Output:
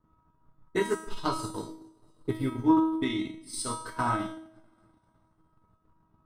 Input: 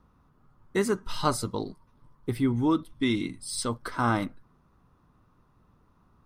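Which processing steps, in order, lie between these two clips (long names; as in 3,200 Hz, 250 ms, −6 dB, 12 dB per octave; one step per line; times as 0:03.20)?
on a send: delay with a high-pass on its return 238 ms, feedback 59%, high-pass 4,200 Hz, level −18 dB
on the sum: coupled-rooms reverb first 0.74 s, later 2.3 s, from −18 dB, DRR −2 dB
transient designer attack +9 dB, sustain −11 dB
tuned comb filter 320 Hz, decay 0.68 s, mix 90%
one half of a high-frequency compander decoder only
level +7 dB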